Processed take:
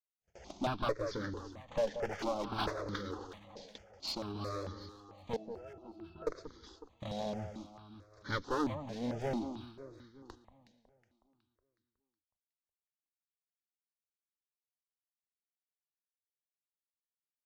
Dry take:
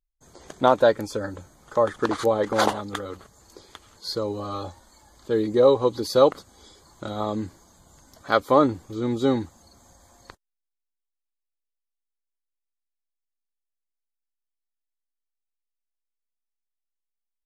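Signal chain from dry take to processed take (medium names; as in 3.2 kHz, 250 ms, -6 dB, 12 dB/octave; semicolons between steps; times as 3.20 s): CVSD coder 32 kbps; gate -50 dBFS, range -40 dB; peaking EQ 1.2 kHz -4.5 dB 0.69 oct; in parallel at +1 dB: compression, threshold -33 dBFS, peak gain reduction 19 dB; on the sum: one-sided clip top -24 dBFS; 5.36–6.27 s: pitch-class resonator E, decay 0.17 s; echo whose repeats swap between lows and highs 184 ms, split 1.3 kHz, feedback 67%, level -9 dB; stepped phaser 4.5 Hz 340–2600 Hz; trim -8 dB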